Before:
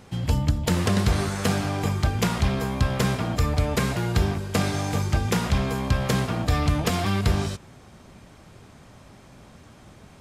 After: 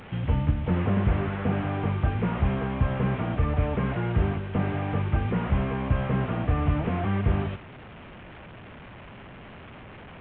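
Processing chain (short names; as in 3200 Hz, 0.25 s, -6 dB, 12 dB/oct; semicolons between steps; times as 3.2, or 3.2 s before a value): delta modulation 16 kbps, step -36.5 dBFS; gain -1.5 dB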